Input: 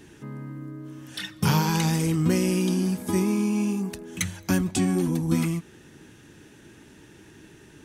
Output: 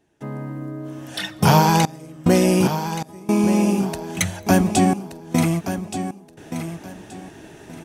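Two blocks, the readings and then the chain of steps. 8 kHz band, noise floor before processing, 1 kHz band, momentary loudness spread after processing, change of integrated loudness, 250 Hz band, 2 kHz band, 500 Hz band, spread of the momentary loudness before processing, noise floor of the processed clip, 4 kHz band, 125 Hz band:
+5.0 dB, -51 dBFS, +12.0 dB, 17 LU, +4.5 dB, +4.5 dB, +6.0 dB, +8.0 dB, 15 LU, -46 dBFS, +5.5 dB, +4.0 dB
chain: peaking EQ 680 Hz +14.5 dB 0.68 oct; trance gate ".xxxxxxxx..xx.." 73 bpm -24 dB; on a send: feedback delay 1175 ms, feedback 25%, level -10 dB; on the sum: trim +5.5 dB

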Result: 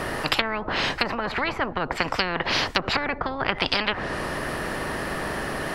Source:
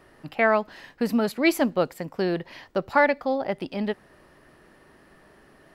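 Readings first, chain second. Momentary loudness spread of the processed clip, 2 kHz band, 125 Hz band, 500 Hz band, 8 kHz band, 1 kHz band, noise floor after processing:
6 LU, +4.0 dB, +4.0 dB, -4.0 dB, +4.5 dB, +2.0 dB, -36 dBFS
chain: low-pass that closes with the level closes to 680 Hz, closed at -20 dBFS; spectrum-flattening compressor 10:1; trim +7.5 dB

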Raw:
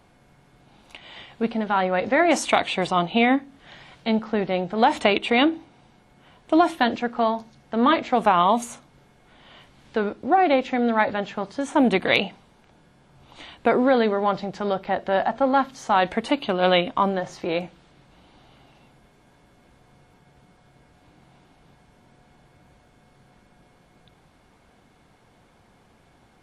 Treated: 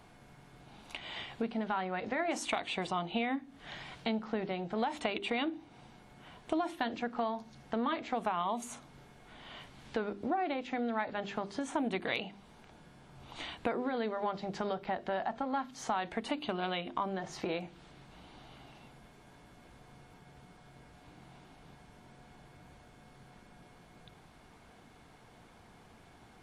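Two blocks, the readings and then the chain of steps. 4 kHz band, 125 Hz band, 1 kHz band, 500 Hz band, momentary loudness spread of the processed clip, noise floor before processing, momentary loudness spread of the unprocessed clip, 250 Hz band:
-12.5 dB, -11.5 dB, -14.0 dB, -14.0 dB, 20 LU, -58 dBFS, 10 LU, -13.0 dB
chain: hum notches 50/100/150/200/250/300/350/400 Hz; compression 4:1, threshold -33 dBFS, peak gain reduction 16.5 dB; band-stop 540 Hz, Q 12

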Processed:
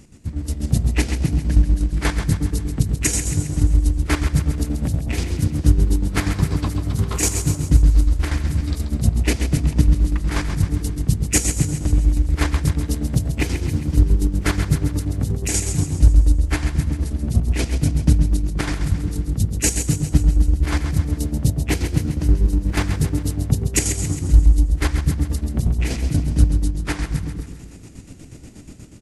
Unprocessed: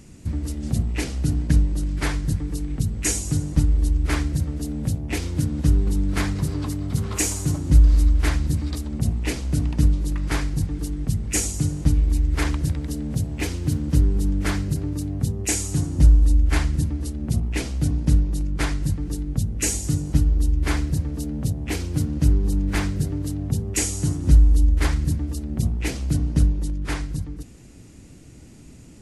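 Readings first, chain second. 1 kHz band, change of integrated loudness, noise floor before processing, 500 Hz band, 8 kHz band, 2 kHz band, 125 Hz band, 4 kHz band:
+3.0 dB, +3.0 dB, -44 dBFS, +3.5 dB, +3.5 dB, +3.0 dB, +3.0 dB, +3.0 dB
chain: level rider gain up to 7 dB; square tremolo 8.3 Hz, depth 60%, duty 45%; feedback delay 134 ms, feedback 53%, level -8.5 dB

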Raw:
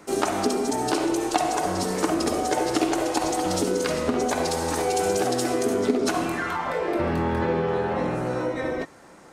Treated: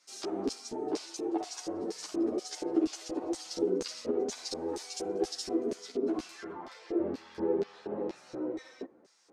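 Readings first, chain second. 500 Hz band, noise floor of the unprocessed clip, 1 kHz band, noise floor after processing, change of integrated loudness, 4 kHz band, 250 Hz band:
-9.5 dB, -48 dBFS, -18.5 dB, -60 dBFS, -10.0 dB, -9.0 dB, -8.0 dB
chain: LFO band-pass square 2.1 Hz 360–5100 Hz; three-phase chorus

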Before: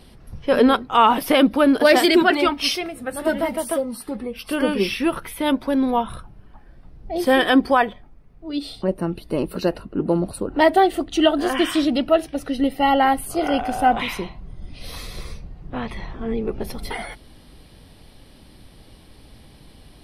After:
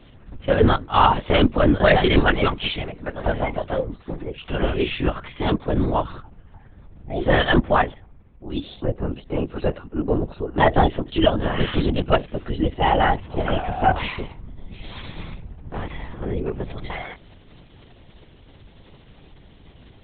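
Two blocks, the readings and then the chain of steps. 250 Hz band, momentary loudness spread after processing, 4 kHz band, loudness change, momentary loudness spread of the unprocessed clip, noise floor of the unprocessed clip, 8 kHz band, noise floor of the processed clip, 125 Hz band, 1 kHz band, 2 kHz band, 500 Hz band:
-4.0 dB, 16 LU, -2.5 dB, -2.0 dB, 16 LU, -48 dBFS, under -40 dB, -49 dBFS, +10.5 dB, -1.5 dB, -1.5 dB, -2.0 dB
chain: LPC vocoder at 8 kHz whisper; trim -1 dB

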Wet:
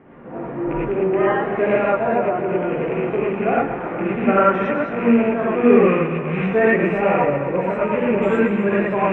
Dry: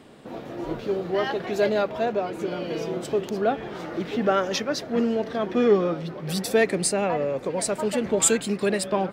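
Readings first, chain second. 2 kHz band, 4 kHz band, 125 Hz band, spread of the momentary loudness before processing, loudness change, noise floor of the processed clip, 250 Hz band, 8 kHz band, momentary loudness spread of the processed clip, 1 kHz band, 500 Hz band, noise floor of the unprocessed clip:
+8.0 dB, no reading, +7.5 dB, 11 LU, +6.0 dB, -29 dBFS, +8.0 dB, under -35 dB, 7 LU, +8.0 dB, +6.0 dB, -39 dBFS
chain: rattle on loud lows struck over -29 dBFS, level -18 dBFS; inverse Chebyshev low-pass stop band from 4.2 kHz, stop band 40 dB; thinning echo 129 ms, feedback 74%, high-pass 170 Hz, level -11 dB; gated-style reverb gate 130 ms rising, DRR -6.5 dB

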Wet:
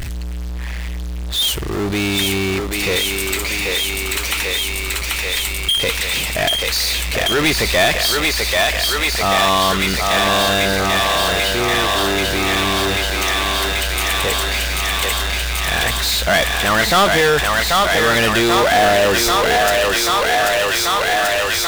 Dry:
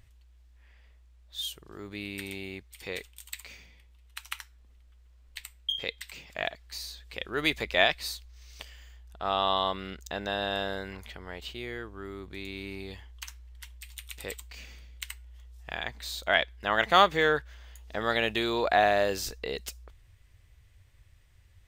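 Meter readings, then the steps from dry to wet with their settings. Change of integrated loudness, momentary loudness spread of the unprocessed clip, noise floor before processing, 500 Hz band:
+14.0 dB, 21 LU, -58 dBFS, +14.0 dB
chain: thinning echo 787 ms, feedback 82%, high-pass 450 Hz, level -4.5 dB; power-law waveshaper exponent 0.35

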